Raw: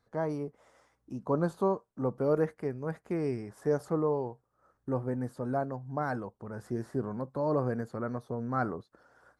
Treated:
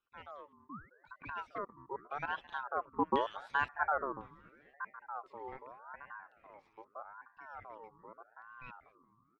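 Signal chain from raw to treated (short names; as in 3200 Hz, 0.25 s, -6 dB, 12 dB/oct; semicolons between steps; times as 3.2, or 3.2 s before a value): random spectral dropouts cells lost 28%; Doppler pass-by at 3.26, 14 m/s, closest 4.9 m; band shelf 530 Hz -12 dB; in parallel at -7.5 dB: one-sided clip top -50 dBFS; on the sum: small resonant body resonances 320/2600 Hz, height 11 dB; painted sound rise, 0.69–0.9, 340–1300 Hz -53 dBFS; on a send: frequency-shifting echo 0.213 s, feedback 61%, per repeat +98 Hz, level -20 dB; on the sum: LFO low-pass square 0.95 Hz 500–3100 Hz; ring modulator with a swept carrier 970 Hz, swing 35%, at 0.82 Hz; gain +4 dB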